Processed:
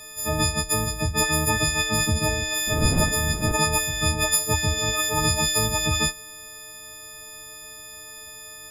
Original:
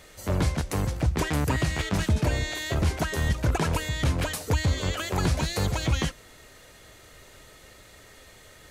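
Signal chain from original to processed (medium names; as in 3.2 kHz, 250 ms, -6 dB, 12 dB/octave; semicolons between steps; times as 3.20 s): partials quantised in pitch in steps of 6 st; 2.66–3.51 s: wind noise 210 Hz -23 dBFS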